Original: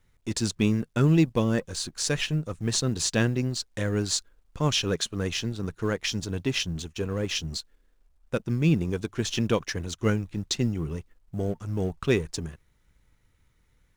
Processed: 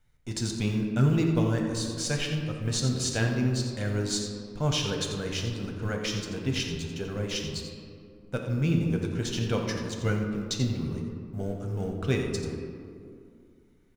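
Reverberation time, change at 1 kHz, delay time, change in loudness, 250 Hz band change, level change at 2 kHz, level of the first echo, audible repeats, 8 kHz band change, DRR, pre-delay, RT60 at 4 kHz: 2.4 s, -2.0 dB, 87 ms, -2.0 dB, -2.0 dB, -2.5 dB, -10.5 dB, 1, -3.0 dB, 1.0 dB, 7 ms, 1.1 s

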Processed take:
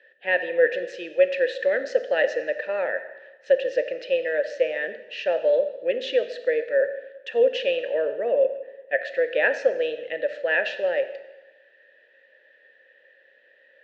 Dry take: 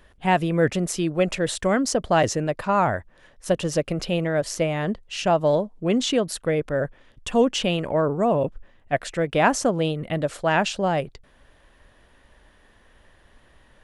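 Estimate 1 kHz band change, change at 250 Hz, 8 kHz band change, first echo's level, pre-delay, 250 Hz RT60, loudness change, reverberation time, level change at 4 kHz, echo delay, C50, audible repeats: -13.0 dB, -18.0 dB, under -20 dB, none, 8 ms, 1.1 s, -1.0 dB, 1.1 s, -5.5 dB, none, 11.0 dB, none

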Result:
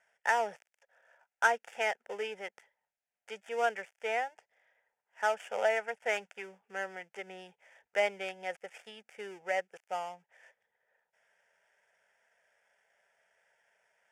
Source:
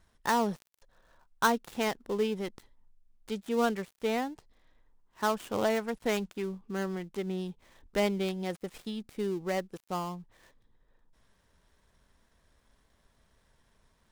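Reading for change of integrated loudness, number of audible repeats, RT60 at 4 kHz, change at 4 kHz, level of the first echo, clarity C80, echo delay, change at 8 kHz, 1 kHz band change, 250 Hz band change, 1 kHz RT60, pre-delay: -1.5 dB, none, none, -4.5 dB, none, none, none, -5.0 dB, -1.0 dB, -21.5 dB, none, none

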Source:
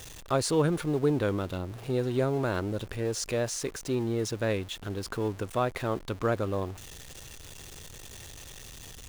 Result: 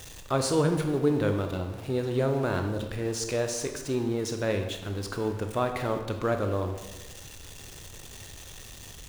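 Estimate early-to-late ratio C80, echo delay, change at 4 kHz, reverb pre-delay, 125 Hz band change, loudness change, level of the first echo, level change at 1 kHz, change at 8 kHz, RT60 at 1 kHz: 9.5 dB, none, +1.0 dB, 23 ms, +1.5 dB, +1.0 dB, none, +1.0 dB, +1.0 dB, 1.1 s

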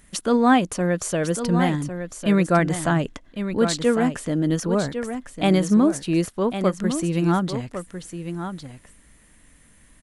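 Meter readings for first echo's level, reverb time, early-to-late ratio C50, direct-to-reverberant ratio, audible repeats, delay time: -9.0 dB, none, none, none, 1, 1.103 s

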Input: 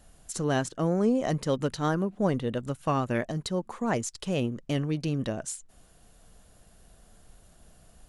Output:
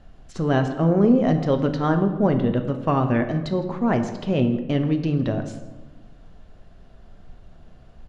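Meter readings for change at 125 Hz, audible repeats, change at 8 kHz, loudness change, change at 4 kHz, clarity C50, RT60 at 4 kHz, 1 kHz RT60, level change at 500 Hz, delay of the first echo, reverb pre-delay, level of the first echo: +8.0 dB, 1, under -10 dB, +7.5 dB, +0.5 dB, 9.5 dB, 0.70 s, 1.0 s, +6.5 dB, 0.161 s, 3 ms, -19.0 dB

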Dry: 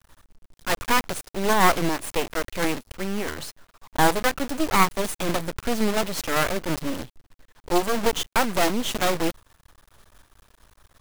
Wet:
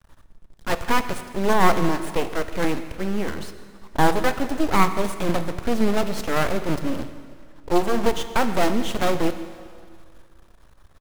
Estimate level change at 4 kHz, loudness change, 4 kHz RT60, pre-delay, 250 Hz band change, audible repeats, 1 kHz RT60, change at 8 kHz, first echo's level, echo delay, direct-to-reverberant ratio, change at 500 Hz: -3.5 dB, +0.5 dB, 2.0 s, 8 ms, +3.0 dB, 1, 2.1 s, -5.5 dB, -20.0 dB, 0.159 s, 9.5 dB, +2.0 dB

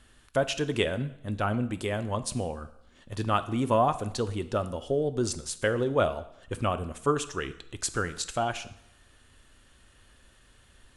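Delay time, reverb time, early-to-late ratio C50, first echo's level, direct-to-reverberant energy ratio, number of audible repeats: none, 0.75 s, 15.0 dB, none, 11.5 dB, none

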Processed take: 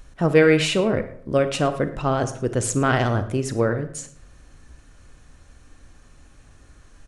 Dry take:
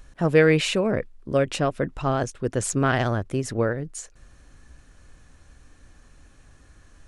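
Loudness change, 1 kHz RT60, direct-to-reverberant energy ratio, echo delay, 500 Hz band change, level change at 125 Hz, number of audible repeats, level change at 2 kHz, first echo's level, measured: +2.0 dB, 0.60 s, 10.0 dB, 0.11 s, +2.5 dB, +2.0 dB, 1, +1.5 dB, -19.5 dB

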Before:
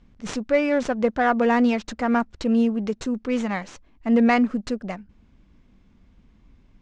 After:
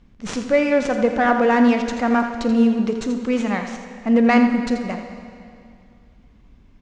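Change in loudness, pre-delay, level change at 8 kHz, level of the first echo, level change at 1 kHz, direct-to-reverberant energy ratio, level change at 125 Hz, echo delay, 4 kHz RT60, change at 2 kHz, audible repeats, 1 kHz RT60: +3.5 dB, 26 ms, n/a, -10.0 dB, +3.5 dB, 5.0 dB, n/a, 83 ms, 2.2 s, +3.5 dB, 1, 2.4 s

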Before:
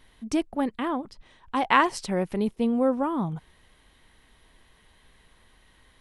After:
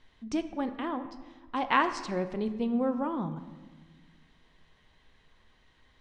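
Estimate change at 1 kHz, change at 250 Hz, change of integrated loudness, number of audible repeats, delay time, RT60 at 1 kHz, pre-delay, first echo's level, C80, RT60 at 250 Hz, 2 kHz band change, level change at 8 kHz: -5.0 dB, -4.5 dB, -5.0 dB, none, none, 1.3 s, 3 ms, none, 12.5 dB, 2.0 s, -5.0 dB, n/a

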